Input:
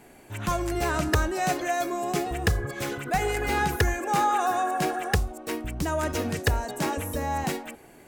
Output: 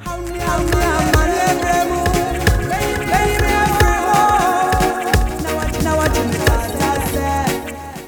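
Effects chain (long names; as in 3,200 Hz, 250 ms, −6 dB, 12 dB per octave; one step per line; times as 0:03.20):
automatic gain control gain up to 13 dB
backwards echo 411 ms −5.5 dB
feedback echo at a low word length 487 ms, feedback 35%, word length 6 bits, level −12.5 dB
level −1.5 dB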